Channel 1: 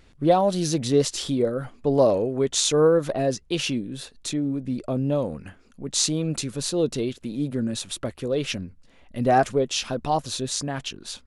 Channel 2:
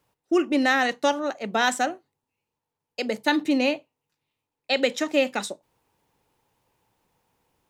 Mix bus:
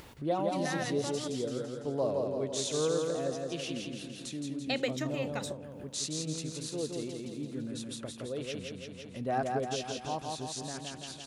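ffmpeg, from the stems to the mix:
ffmpeg -i stem1.wav -i stem2.wav -filter_complex "[0:a]highpass=61,volume=-13dB,asplit=3[link_01][link_02][link_03];[link_02]volume=-3.5dB[link_04];[1:a]acompressor=threshold=-28dB:ratio=2,volume=-1dB,asplit=3[link_05][link_06][link_07];[link_05]atrim=end=1.28,asetpts=PTS-STARTPTS,afade=type=out:start_time=1.276:duration=0.004:curve=hsin[link_08];[link_06]atrim=start=1.28:end=4.1,asetpts=PTS-STARTPTS,volume=0[link_09];[link_07]atrim=start=4.1,asetpts=PTS-STARTPTS,afade=type=in:duration=0.004:curve=hsin[link_10];[link_08][link_09][link_10]concat=n=3:v=0:a=1[link_11];[link_03]apad=whole_len=339227[link_12];[link_11][link_12]sidechaincompress=threshold=-38dB:ratio=8:attack=11:release=1150[link_13];[link_04]aecho=0:1:168|336|504|672|840|1008|1176|1344|1512:1|0.57|0.325|0.185|0.106|0.0602|0.0343|0.0195|0.0111[link_14];[link_01][link_13][link_14]amix=inputs=3:normalize=0,acompressor=mode=upward:threshold=-37dB:ratio=2.5" out.wav

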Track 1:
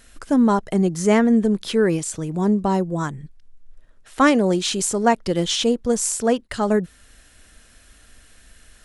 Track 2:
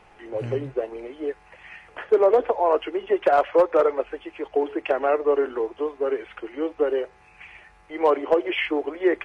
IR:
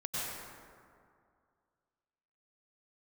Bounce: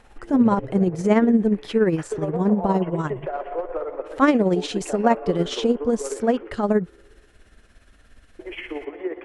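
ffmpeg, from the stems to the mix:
-filter_complex "[0:a]volume=1.5dB[link_01];[1:a]acompressor=threshold=-25dB:ratio=2.5,volume=-2.5dB,asplit=3[link_02][link_03][link_04];[link_02]atrim=end=6.52,asetpts=PTS-STARTPTS,afade=type=out:start_time=6.516:duration=0.004:curve=hsin[link_05];[link_03]atrim=start=6.52:end=8.39,asetpts=PTS-STARTPTS,volume=0[link_06];[link_04]atrim=start=8.39,asetpts=PTS-STARTPTS,afade=type=in:duration=0.004:curve=hsin[link_07];[link_05][link_06][link_07]concat=n=3:v=0:a=1,asplit=2[link_08][link_09];[link_09]volume=-9.5dB[link_10];[2:a]atrim=start_sample=2205[link_11];[link_10][link_11]afir=irnorm=-1:irlink=0[link_12];[link_01][link_08][link_12]amix=inputs=3:normalize=0,lowpass=frequency=1700:poles=1,tremolo=f=17:d=0.52"

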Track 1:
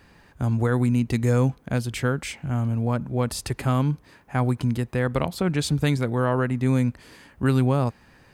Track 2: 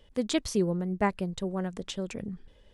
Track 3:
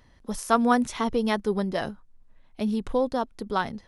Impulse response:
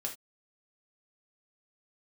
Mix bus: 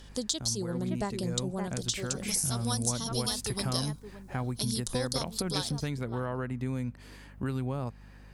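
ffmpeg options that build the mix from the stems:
-filter_complex "[0:a]acompressor=threshold=-28dB:ratio=3,aeval=exprs='val(0)+0.00501*(sin(2*PI*50*n/s)+sin(2*PI*2*50*n/s)/2+sin(2*PI*3*50*n/s)/3+sin(2*PI*4*50*n/s)/4+sin(2*PI*5*50*n/s)/5)':channel_layout=same,volume=-4dB[link_01];[1:a]aemphasis=mode=reproduction:type=75fm,volume=-2dB,asplit=3[link_02][link_03][link_04];[link_03]volume=-12.5dB[link_05];[2:a]adelay=2000,volume=-9.5dB,asplit=2[link_06][link_07];[link_07]volume=-12.5dB[link_08];[link_04]apad=whole_len=367684[link_09];[link_01][link_09]sidechaincompress=threshold=-31dB:ratio=3:attack=5.5:release=636[link_10];[link_02][link_06]amix=inputs=2:normalize=0,aexciter=amount=12.5:drive=9.7:freq=3800,acompressor=threshold=-29dB:ratio=6,volume=0dB[link_11];[link_05][link_08]amix=inputs=2:normalize=0,aecho=0:1:568:1[link_12];[link_10][link_11][link_12]amix=inputs=3:normalize=0"

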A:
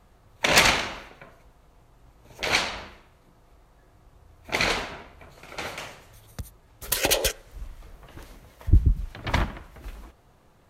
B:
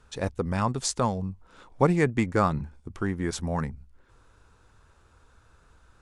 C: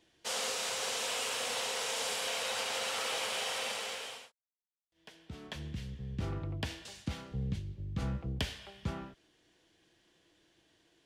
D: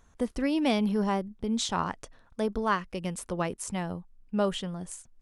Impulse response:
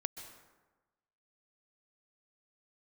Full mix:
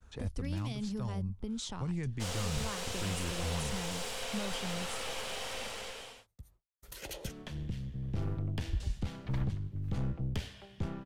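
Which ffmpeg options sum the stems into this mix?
-filter_complex "[0:a]agate=range=-33dB:threshold=-45dB:ratio=3:detection=peak,volume=-20dB[link_01];[1:a]acrossover=split=3600[link_02][link_03];[link_03]acompressor=threshold=-53dB:ratio=4:attack=1:release=60[link_04];[link_02][link_04]amix=inputs=2:normalize=0,volume=-6.5dB[link_05];[2:a]highpass=100,lowshelf=frequency=400:gain=7,aeval=exprs='(tanh(31.6*val(0)+0.55)-tanh(0.55))/31.6':channel_layout=same,adelay=1950,volume=-2dB[link_06];[3:a]acontrast=62,volume=-12.5dB,asplit=2[link_07][link_08];[link_08]apad=whole_len=471679[link_09];[link_01][link_09]sidechaincompress=threshold=-49dB:ratio=4:attack=16:release=930[link_10];[link_10][link_05][link_07]amix=inputs=3:normalize=0,acrossover=split=160|3000[link_11][link_12][link_13];[link_12]acompressor=threshold=-41dB:ratio=6[link_14];[link_11][link_14][link_13]amix=inputs=3:normalize=0,alimiter=level_in=7dB:limit=-24dB:level=0:latency=1:release=28,volume=-7dB,volume=0dB[link_15];[link_06][link_15]amix=inputs=2:normalize=0,lowshelf=frequency=130:gain=8,agate=range=-33dB:threshold=-58dB:ratio=3:detection=peak"

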